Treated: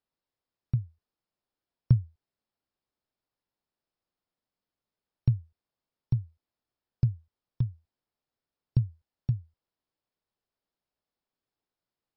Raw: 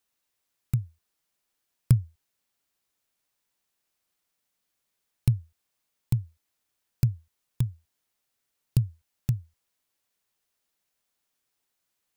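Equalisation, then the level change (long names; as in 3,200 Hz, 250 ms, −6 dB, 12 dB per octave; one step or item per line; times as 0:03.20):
linear-phase brick-wall low-pass 5,500 Hz
parametric band 2,300 Hz −8.5 dB 2 octaves
high-shelf EQ 3,800 Hz −9 dB
−1.5 dB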